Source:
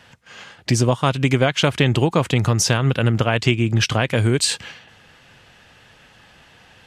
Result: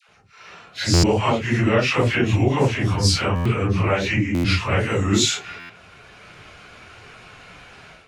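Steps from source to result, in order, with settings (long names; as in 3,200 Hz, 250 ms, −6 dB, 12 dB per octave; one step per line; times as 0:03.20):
random phases in long frames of 100 ms
parametric band 88 Hz −2.5 dB
all-pass dispersion lows, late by 77 ms, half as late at 910 Hz
automatic gain control gain up to 11 dB
speed change −15%
buffer that repeats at 0:00.93/0:03.35/0:04.34/0:05.59, samples 512, times 8
level −5 dB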